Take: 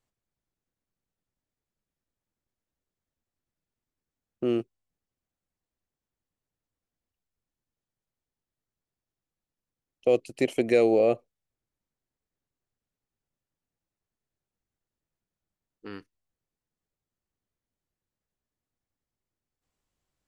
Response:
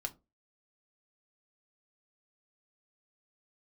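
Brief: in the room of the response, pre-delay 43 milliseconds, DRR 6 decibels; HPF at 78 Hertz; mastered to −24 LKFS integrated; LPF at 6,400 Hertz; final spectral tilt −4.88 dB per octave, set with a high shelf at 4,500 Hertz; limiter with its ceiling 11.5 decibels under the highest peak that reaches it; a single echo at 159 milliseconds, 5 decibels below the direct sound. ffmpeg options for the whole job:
-filter_complex "[0:a]highpass=78,lowpass=6400,highshelf=frequency=4500:gain=6.5,alimiter=limit=-21dB:level=0:latency=1,aecho=1:1:159:0.562,asplit=2[link_01][link_02];[1:a]atrim=start_sample=2205,adelay=43[link_03];[link_02][link_03]afir=irnorm=-1:irlink=0,volume=-5.5dB[link_04];[link_01][link_04]amix=inputs=2:normalize=0,volume=7.5dB"

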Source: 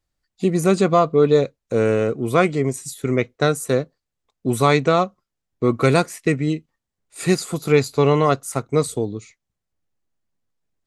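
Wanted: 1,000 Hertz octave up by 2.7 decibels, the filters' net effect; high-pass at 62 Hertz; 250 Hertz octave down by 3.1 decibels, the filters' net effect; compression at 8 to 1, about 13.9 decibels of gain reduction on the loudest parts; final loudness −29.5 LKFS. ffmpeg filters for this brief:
ffmpeg -i in.wav -af "highpass=62,equalizer=frequency=250:width_type=o:gain=-5,equalizer=frequency=1000:width_type=o:gain=4,acompressor=threshold=-25dB:ratio=8,volume=1.5dB" out.wav

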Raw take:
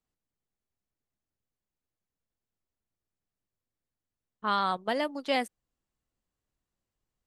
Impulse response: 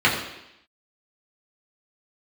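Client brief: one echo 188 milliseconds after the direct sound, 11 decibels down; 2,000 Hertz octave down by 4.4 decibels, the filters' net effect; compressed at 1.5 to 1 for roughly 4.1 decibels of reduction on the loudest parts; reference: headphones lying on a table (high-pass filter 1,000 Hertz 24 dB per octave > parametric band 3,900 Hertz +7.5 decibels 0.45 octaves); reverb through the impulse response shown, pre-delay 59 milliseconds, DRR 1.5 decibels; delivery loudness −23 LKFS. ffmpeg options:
-filter_complex "[0:a]equalizer=frequency=2000:width_type=o:gain=-6,acompressor=threshold=-35dB:ratio=1.5,aecho=1:1:188:0.282,asplit=2[link_01][link_02];[1:a]atrim=start_sample=2205,adelay=59[link_03];[link_02][link_03]afir=irnorm=-1:irlink=0,volume=-22dB[link_04];[link_01][link_04]amix=inputs=2:normalize=0,highpass=frequency=1000:width=0.5412,highpass=frequency=1000:width=1.3066,equalizer=frequency=3900:width_type=o:width=0.45:gain=7.5,volume=13.5dB"

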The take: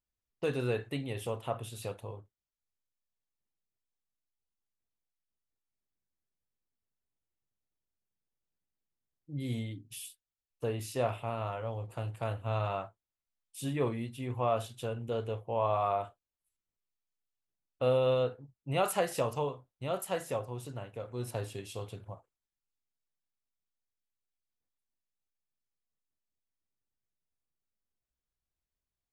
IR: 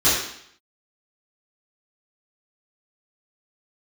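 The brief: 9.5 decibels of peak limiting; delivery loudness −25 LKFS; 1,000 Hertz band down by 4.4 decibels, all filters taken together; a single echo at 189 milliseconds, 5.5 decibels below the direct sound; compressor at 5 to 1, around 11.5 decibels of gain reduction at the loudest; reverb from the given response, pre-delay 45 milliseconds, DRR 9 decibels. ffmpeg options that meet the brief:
-filter_complex "[0:a]equalizer=frequency=1000:width_type=o:gain=-6.5,acompressor=threshold=-39dB:ratio=5,alimiter=level_in=12.5dB:limit=-24dB:level=0:latency=1,volume=-12.5dB,aecho=1:1:189:0.531,asplit=2[link_01][link_02];[1:a]atrim=start_sample=2205,adelay=45[link_03];[link_02][link_03]afir=irnorm=-1:irlink=0,volume=-28dB[link_04];[link_01][link_04]amix=inputs=2:normalize=0,volume=20.5dB"

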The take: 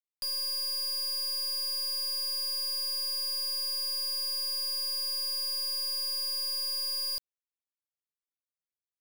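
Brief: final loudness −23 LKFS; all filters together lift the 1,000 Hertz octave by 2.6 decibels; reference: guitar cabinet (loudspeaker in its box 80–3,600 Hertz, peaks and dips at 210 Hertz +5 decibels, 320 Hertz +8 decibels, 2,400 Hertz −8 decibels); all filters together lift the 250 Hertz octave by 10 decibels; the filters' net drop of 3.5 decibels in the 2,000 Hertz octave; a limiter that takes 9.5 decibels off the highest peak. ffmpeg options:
ffmpeg -i in.wav -af "equalizer=frequency=250:width_type=o:gain=6.5,equalizer=frequency=1000:width_type=o:gain=3.5,equalizer=frequency=2000:width_type=o:gain=-3.5,alimiter=level_in=16.5dB:limit=-24dB:level=0:latency=1,volume=-16.5dB,highpass=80,equalizer=frequency=210:width_type=q:width=4:gain=5,equalizer=frequency=320:width_type=q:width=4:gain=8,equalizer=frequency=2400:width_type=q:width=4:gain=-8,lowpass=frequency=3600:width=0.5412,lowpass=frequency=3600:width=1.3066,volume=28dB" out.wav

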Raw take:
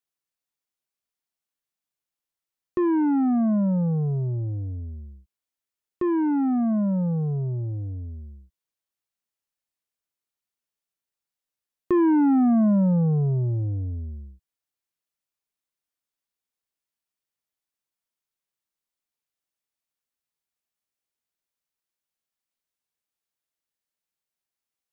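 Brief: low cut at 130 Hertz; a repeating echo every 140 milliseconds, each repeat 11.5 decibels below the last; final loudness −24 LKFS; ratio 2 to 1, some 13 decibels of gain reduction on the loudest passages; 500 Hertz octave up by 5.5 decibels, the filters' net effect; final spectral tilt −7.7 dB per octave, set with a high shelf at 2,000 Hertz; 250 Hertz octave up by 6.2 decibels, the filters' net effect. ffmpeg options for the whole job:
ffmpeg -i in.wav -af "highpass=130,equalizer=frequency=250:width_type=o:gain=7,equalizer=frequency=500:width_type=o:gain=4,highshelf=frequency=2000:gain=6.5,acompressor=threshold=-35dB:ratio=2,aecho=1:1:140|280|420:0.266|0.0718|0.0194,volume=5dB" out.wav

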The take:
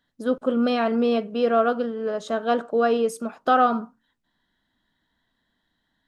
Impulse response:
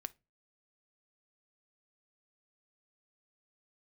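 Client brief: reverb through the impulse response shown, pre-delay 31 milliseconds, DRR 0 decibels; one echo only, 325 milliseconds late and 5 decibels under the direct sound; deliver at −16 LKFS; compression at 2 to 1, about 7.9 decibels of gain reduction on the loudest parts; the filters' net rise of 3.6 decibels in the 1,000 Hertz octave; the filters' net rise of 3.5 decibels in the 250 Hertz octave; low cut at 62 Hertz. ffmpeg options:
-filter_complex "[0:a]highpass=62,equalizer=frequency=250:width_type=o:gain=3.5,equalizer=frequency=1000:width_type=o:gain=5.5,acompressor=threshold=-25dB:ratio=2,aecho=1:1:325:0.562,asplit=2[link_01][link_02];[1:a]atrim=start_sample=2205,adelay=31[link_03];[link_02][link_03]afir=irnorm=-1:irlink=0,volume=3dB[link_04];[link_01][link_04]amix=inputs=2:normalize=0,volume=6dB"

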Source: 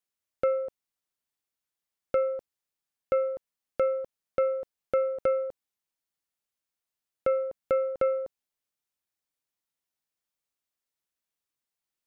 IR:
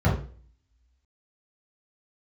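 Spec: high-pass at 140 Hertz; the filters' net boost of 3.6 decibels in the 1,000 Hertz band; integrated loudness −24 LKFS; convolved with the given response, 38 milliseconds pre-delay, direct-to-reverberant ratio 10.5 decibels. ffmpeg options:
-filter_complex "[0:a]highpass=140,equalizer=frequency=1000:width_type=o:gain=6,asplit=2[link_01][link_02];[1:a]atrim=start_sample=2205,adelay=38[link_03];[link_02][link_03]afir=irnorm=-1:irlink=0,volume=-24.5dB[link_04];[link_01][link_04]amix=inputs=2:normalize=0,volume=4dB"

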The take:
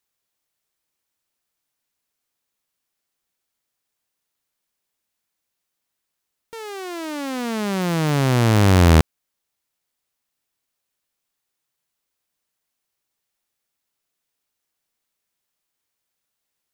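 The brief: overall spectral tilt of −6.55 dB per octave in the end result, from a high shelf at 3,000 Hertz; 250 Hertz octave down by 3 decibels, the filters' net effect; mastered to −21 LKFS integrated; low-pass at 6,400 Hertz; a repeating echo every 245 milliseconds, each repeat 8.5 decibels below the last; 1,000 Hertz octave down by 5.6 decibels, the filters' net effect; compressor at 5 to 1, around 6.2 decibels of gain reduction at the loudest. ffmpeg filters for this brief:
ffmpeg -i in.wav -af "lowpass=6400,equalizer=frequency=250:width_type=o:gain=-4,equalizer=frequency=1000:width_type=o:gain=-6.5,highshelf=frequency=3000:gain=-6,acompressor=threshold=-18dB:ratio=5,aecho=1:1:245|490|735|980:0.376|0.143|0.0543|0.0206,volume=3.5dB" out.wav

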